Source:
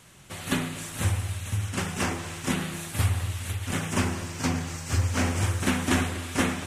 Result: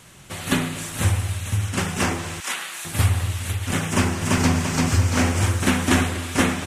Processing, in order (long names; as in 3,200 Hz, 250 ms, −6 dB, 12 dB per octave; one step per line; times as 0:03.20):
0:02.40–0:02.85: high-pass filter 1,000 Hz 12 dB per octave
0:03.87–0:04.55: delay throw 340 ms, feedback 45%, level −1 dB
level +5.5 dB